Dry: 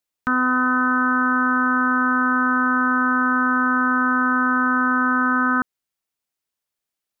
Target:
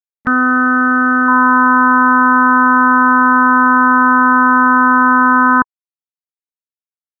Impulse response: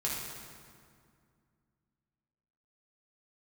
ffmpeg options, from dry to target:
-af "asetnsamples=nb_out_samples=441:pad=0,asendcmd='1.28 equalizer g 8',equalizer=frequency=1000:width_type=o:width=0.21:gain=-8.5,afftfilt=real='re*gte(hypot(re,im),0.0447)':imag='im*gte(hypot(re,im),0.0447)':win_size=1024:overlap=0.75,acompressor=mode=upward:threshold=-34dB:ratio=2.5,volume=7.5dB"

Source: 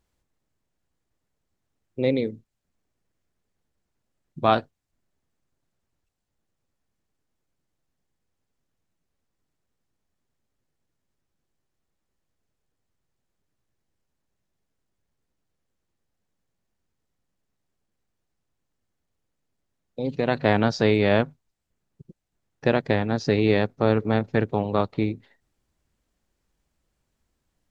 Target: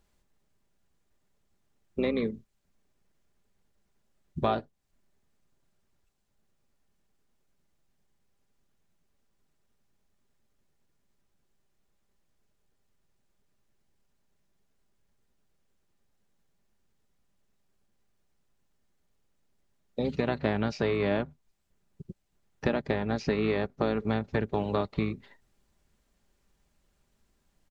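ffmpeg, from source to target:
ffmpeg -i in.wav -filter_complex "[0:a]aecho=1:1:5:0.31,asplit=2[link_01][link_02];[link_02]asetrate=22050,aresample=44100,atempo=2,volume=-9dB[link_03];[link_01][link_03]amix=inputs=2:normalize=0,acrossover=split=990|2300[link_04][link_05][link_06];[link_04]acompressor=threshold=-29dB:ratio=4[link_07];[link_05]acompressor=threshold=-42dB:ratio=4[link_08];[link_06]acompressor=threshold=-48dB:ratio=4[link_09];[link_07][link_08][link_09]amix=inputs=3:normalize=0,volume=2.5dB" out.wav

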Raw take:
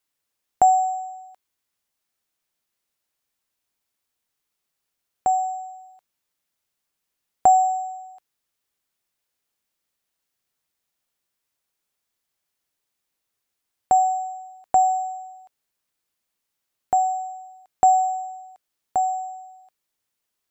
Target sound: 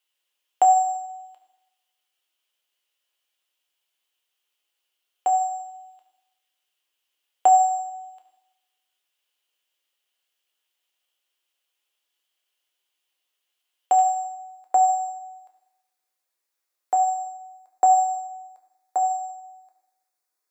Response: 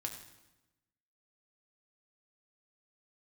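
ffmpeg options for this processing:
-filter_complex "[0:a]highpass=frequency=370:width=0.5412,highpass=frequency=370:width=1.3066,asetnsamples=nb_out_samples=441:pad=0,asendcmd='13.99 equalizer g -3.5;16.97 equalizer g -12',equalizer=frequency=3000:width=3.2:gain=13.5[link_01];[1:a]atrim=start_sample=2205[link_02];[link_01][link_02]afir=irnorm=-1:irlink=0"

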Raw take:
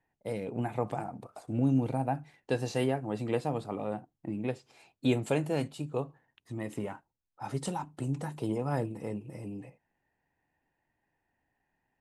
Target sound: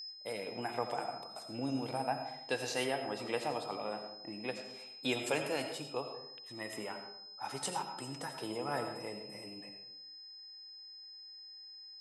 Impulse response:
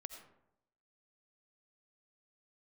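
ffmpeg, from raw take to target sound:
-filter_complex "[0:a]highpass=frequency=1200:poles=1,aeval=exprs='val(0)+0.00501*sin(2*PI*5100*n/s)':channel_layout=same[link_01];[1:a]atrim=start_sample=2205[link_02];[link_01][link_02]afir=irnorm=-1:irlink=0,volume=8.5dB"

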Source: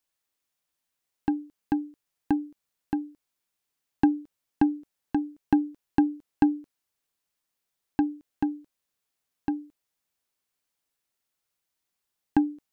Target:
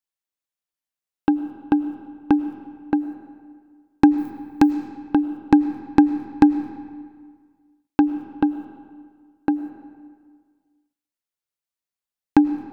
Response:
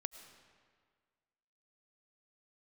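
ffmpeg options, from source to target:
-filter_complex "[0:a]agate=range=-17dB:threshold=-42dB:ratio=16:detection=peak,asettb=1/sr,asplit=3[link_01][link_02][link_03];[link_01]atrim=end=4.184[link_04];[link_02]atrim=start=4.18:end=4.71,asetpts=PTS-STARTPTS,afade=type=in:duration=0.004:curve=qsin,afade=type=out:start_time=0.526:duration=0.004:curve=qsin,aemphasis=mode=production:type=75fm[link_05];[link_03]atrim=start=4.706[link_06];[link_04][link_05]acrossfade=duration=0.004:curve1=hsin:curve2=qsin[link_07];[link_07][link_06]acrossfade=duration=0.004:curve1=qsin:curve2=hsin,asplit=2[link_08][link_09];[1:a]atrim=start_sample=2205[link_10];[link_09][link_10]afir=irnorm=-1:irlink=0,volume=10dB[link_11];[link_08][link_11]amix=inputs=2:normalize=0,volume=-2.5dB"

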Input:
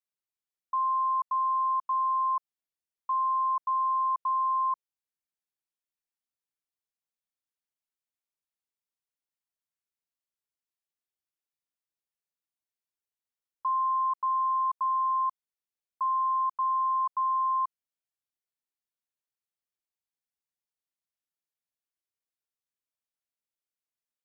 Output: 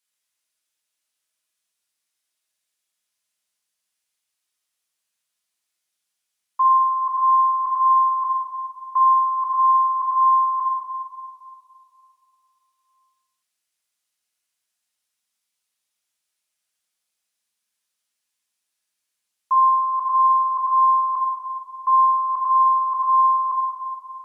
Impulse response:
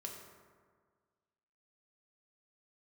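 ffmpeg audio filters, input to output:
-filter_complex "[0:a]areverse,tiltshelf=frequency=920:gain=-8.5[link_01];[1:a]atrim=start_sample=2205,asetrate=23373,aresample=44100[link_02];[link_01][link_02]afir=irnorm=-1:irlink=0,volume=8.5dB"

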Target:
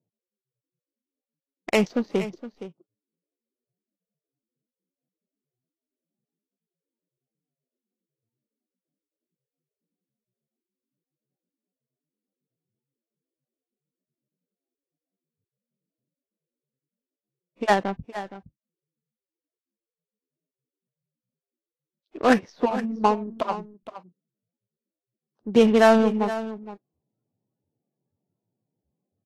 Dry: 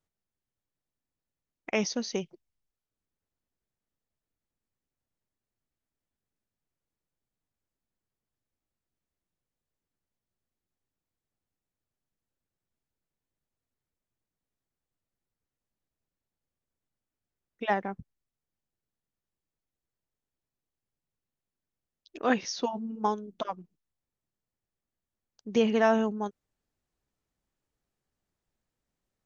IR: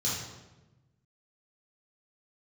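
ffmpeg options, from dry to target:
-filter_complex "[0:a]adynamicsmooth=sensitivity=3:basefreq=670,asplit=2[link_01][link_02];[link_02]aecho=0:1:467:0.211[link_03];[link_01][link_03]amix=inputs=2:normalize=0,volume=8dB" -ar 44100 -c:a libvorbis -b:a 32k

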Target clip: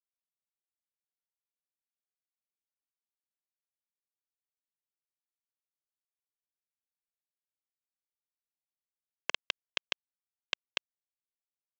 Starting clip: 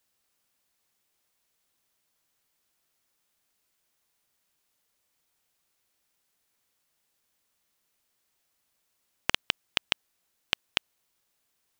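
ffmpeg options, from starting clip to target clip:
ffmpeg -i in.wav -af "highpass=240,aecho=1:1:1.9:0.77,aresample=16000,acrusher=bits=7:mix=0:aa=0.000001,aresample=44100,volume=-8dB" out.wav

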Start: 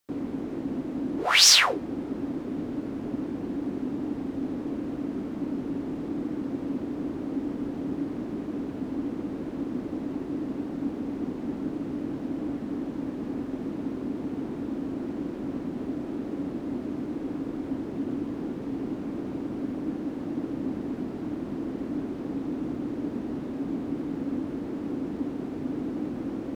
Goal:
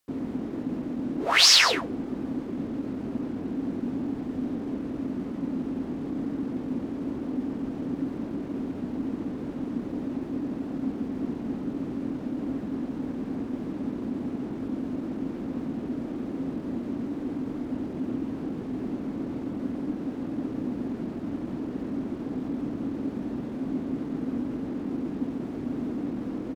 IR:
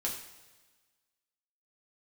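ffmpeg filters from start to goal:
-filter_complex "[0:a]acrossover=split=7000[link_01][link_02];[link_02]alimiter=limit=-20dB:level=0:latency=1[link_03];[link_01][link_03]amix=inputs=2:normalize=0,asetrate=41625,aresample=44100,atempo=1.05946,aecho=1:1:133:0.299"

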